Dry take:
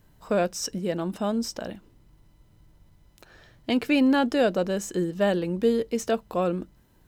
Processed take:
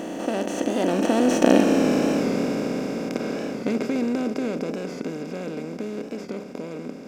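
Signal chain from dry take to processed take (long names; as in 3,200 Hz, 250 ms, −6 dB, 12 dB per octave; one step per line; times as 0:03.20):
compressor on every frequency bin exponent 0.2
source passing by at 0:01.80, 35 m/s, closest 17 metres
parametric band 250 Hz +9.5 dB 2 octaves
wow of a warped record 45 rpm, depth 100 cents
level −3.5 dB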